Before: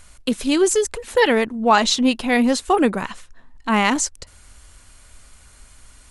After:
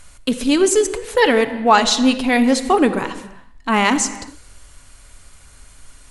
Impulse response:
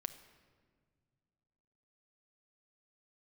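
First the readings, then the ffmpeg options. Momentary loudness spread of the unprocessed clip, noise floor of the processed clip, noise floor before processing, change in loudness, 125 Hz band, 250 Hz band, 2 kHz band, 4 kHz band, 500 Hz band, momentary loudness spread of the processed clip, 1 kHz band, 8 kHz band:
9 LU, −46 dBFS, −50 dBFS, +2.5 dB, can't be measured, +2.5 dB, +2.0 dB, +2.0 dB, +2.5 dB, 11 LU, +2.5 dB, +2.0 dB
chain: -filter_complex "[1:a]atrim=start_sample=2205,afade=type=out:start_time=0.4:duration=0.01,atrim=end_sample=18081,asetrate=38808,aresample=44100[link_01];[0:a][link_01]afir=irnorm=-1:irlink=0,volume=3.5dB"

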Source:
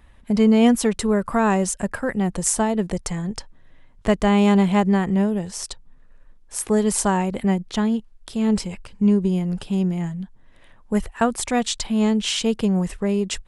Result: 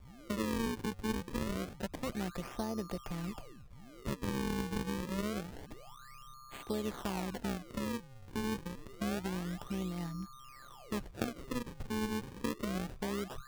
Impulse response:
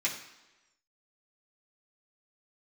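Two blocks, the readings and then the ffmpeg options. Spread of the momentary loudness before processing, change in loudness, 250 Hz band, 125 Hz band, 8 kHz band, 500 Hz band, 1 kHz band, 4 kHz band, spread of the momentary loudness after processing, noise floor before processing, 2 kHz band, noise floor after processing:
13 LU, −17.5 dB, −18.0 dB, −15.5 dB, −21.5 dB, −17.5 dB, −16.5 dB, −16.0 dB, 14 LU, −50 dBFS, −13.5 dB, −54 dBFS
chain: -filter_complex "[0:a]acrossover=split=450|1500[link_01][link_02][link_03];[link_01]acompressor=threshold=-28dB:ratio=4[link_04];[link_02]acompressor=threshold=-32dB:ratio=4[link_05];[link_03]acompressor=threshold=-40dB:ratio=4[link_06];[link_04][link_05][link_06]amix=inputs=3:normalize=0,aeval=exprs='val(0)+0.00794*sin(2*PI*1200*n/s)':channel_layout=same,tremolo=f=130:d=0.571,acrusher=samples=38:mix=1:aa=0.000001:lfo=1:lforange=60.8:lforate=0.27,volume=-7dB"

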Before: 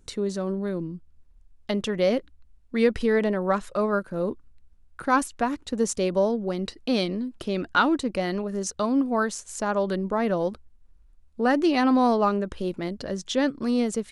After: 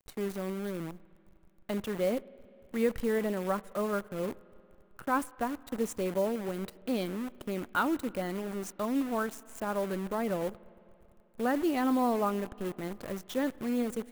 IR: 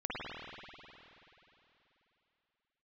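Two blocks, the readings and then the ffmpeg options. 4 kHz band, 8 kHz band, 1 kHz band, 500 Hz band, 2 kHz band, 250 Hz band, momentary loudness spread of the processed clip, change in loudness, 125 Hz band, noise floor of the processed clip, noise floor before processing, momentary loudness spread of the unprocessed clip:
−11.5 dB, −9.5 dB, −7.5 dB, −7.5 dB, −8.5 dB, −7.0 dB, 9 LU, −7.5 dB, −7.0 dB, −61 dBFS, −56 dBFS, 10 LU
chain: -filter_complex "[0:a]acrusher=bits=6:dc=4:mix=0:aa=0.000001,equalizer=frequency=4900:width=0.8:gain=-8.5,asplit=2[link_01][link_02];[1:a]atrim=start_sample=2205[link_03];[link_02][link_03]afir=irnorm=-1:irlink=0,volume=-26dB[link_04];[link_01][link_04]amix=inputs=2:normalize=0,volume=-7.5dB"

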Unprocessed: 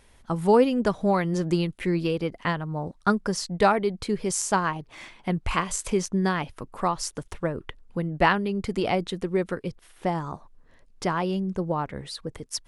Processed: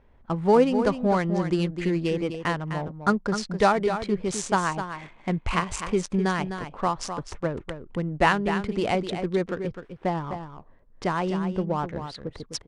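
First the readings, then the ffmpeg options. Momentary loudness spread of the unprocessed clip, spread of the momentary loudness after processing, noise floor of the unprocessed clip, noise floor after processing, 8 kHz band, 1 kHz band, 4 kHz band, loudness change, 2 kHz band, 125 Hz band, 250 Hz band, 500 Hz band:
12 LU, 12 LU, −57 dBFS, −54 dBFS, −4.5 dB, +0.5 dB, −1.0 dB, 0.0 dB, +0.5 dB, 0.0 dB, +0.5 dB, +0.5 dB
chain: -af "adynamicsmooth=sensitivity=7.5:basefreq=1400,aecho=1:1:255:0.355,aresample=22050,aresample=44100"

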